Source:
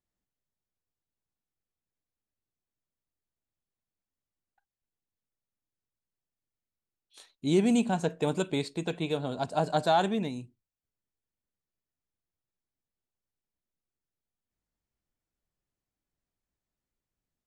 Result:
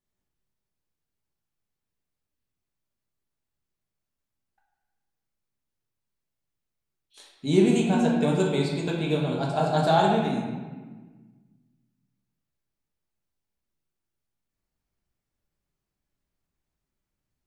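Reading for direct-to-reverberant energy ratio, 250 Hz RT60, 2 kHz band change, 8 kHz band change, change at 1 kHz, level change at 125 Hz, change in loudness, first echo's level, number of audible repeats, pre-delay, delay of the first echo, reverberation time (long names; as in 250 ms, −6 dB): −3.0 dB, 1.9 s, +4.5 dB, +2.0 dB, +4.5 dB, +7.5 dB, +5.0 dB, no echo audible, no echo audible, 5 ms, no echo audible, 1.4 s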